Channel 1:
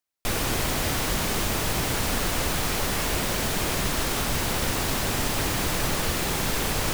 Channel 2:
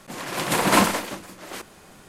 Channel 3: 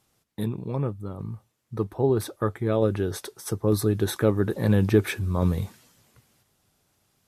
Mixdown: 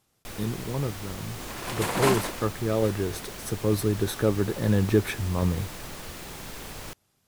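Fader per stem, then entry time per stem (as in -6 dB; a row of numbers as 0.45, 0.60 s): -13.5, -7.5, -2.0 dB; 0.00, 1.30, 0.00 s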